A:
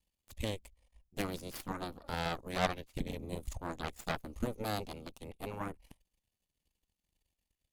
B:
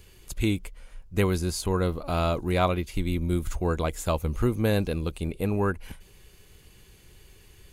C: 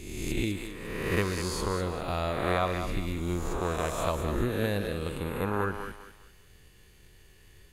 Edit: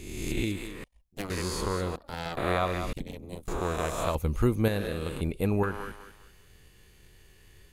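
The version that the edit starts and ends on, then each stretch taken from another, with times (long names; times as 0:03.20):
C
0:00.84–0:01.30: punch in from A
0:01.96–0:02.37: punch in from A
0:02.93–0:03.48: punch in from A
0:04.15–0:04.68: punch in from B
0:05.21–0:05.63: punch in from B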